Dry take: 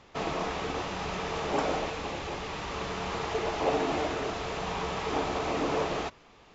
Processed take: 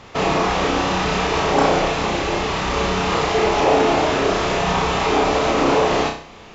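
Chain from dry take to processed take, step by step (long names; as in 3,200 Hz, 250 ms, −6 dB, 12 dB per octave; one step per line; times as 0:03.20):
in parallel at +2 dB: brickwall limiter −25 dBFS, peak gain reduction 10 dB
on the sum: flutter between parallel walls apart 5.5 metres, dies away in 0.45 s
level +5.5 dB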